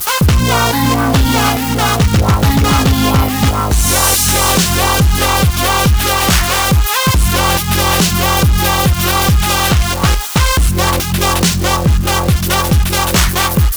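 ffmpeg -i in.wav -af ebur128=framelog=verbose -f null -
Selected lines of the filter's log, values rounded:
Integrated loudness:
  I:         -11.8 LUFS
  Threshold: -21.8 LUFS
Loudness range:
  LRA:         1.5 LU
  Threshold: -31.7 LUFS
  LRA low:   -12.6 LUFS
  LRA high:  -11.0 LUFS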